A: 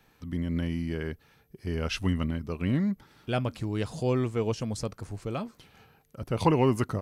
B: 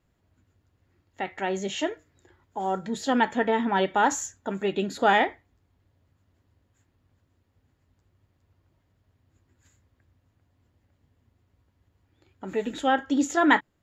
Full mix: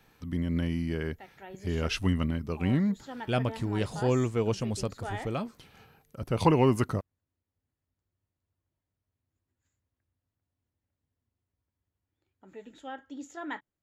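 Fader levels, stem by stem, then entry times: +0.5, -18.0 dB; 0.00, 0.00 s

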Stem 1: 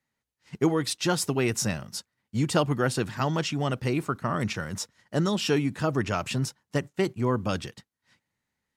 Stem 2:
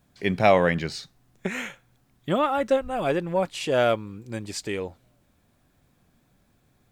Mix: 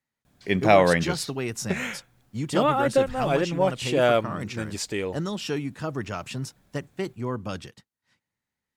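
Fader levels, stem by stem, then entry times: -4.5, +1.0 dB; 0.00, 0.25 s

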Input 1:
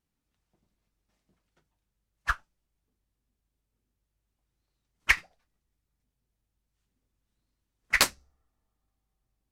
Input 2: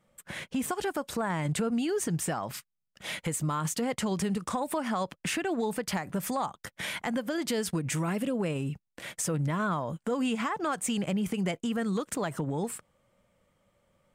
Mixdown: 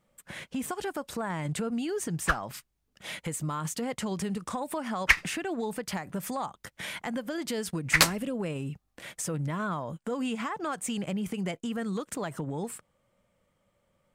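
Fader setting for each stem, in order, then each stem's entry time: +1.5, -2.5 dB; 0.00, 0.00 s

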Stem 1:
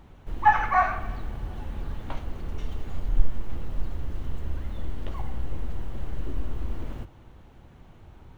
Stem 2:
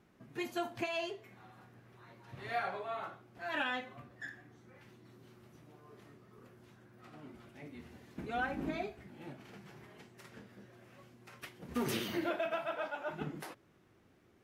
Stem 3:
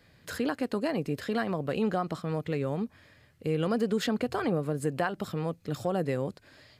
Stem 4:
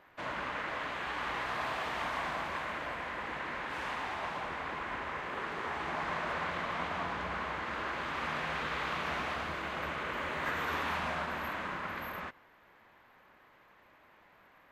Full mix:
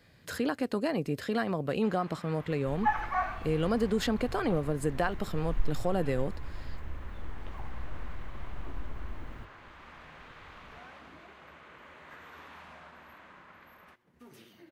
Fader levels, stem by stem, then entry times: -9.0, -19.0, -0.5, -15.5 dB; 2.40, 2.45, 0.00, 1.65 s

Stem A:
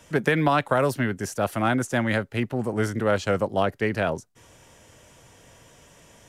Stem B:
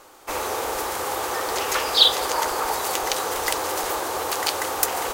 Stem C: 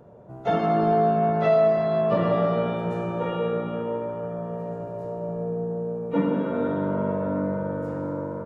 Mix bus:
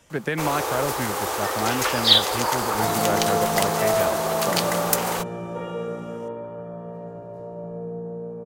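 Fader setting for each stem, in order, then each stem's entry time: -4.5, 0.0, -4.0 dB; 0.00, 0.10, 2.35 s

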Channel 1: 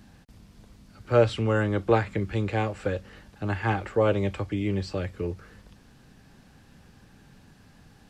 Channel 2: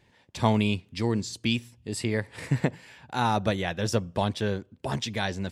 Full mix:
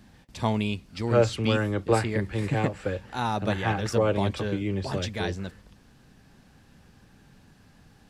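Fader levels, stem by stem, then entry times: -1.5, -3.0 dB; 0.00, 0.00 s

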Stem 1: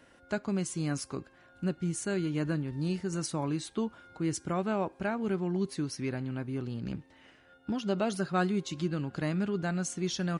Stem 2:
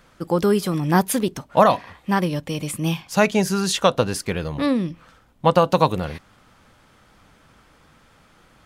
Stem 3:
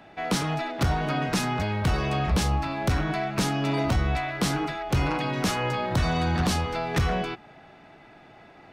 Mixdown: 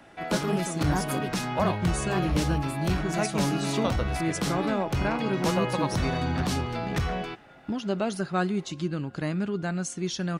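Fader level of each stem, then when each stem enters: +2.0, -13.5, -4.0 dB; 0.00, 0.00, 0.00 s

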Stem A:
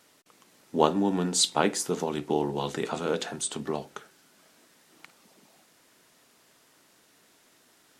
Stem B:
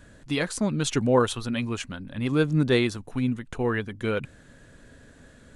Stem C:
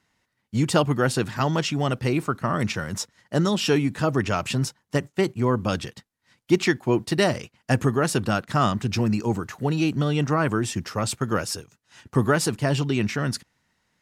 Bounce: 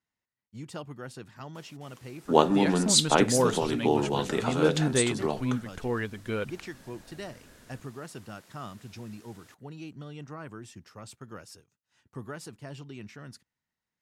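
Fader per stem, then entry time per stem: +2.0, -4.5, -19.5 dB; 1.55, 2.25, 0.00 s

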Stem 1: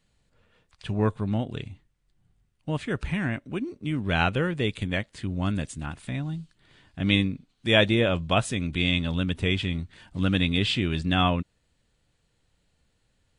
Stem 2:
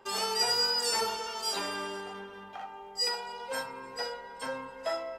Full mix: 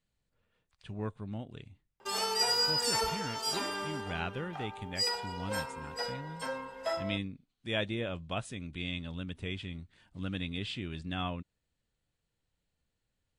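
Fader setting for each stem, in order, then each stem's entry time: -13.0, -1.0 dB; 0.00, 2.00 s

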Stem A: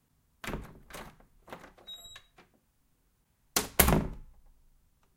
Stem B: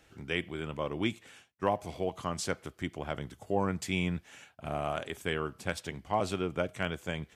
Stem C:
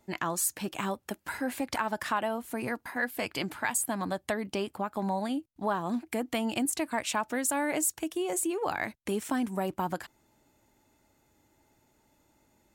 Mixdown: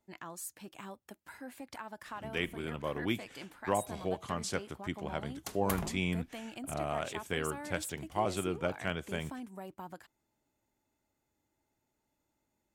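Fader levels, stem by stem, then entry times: -15.0, -2.0, -14.0 dB; 1.90, 2.05, 0.00 s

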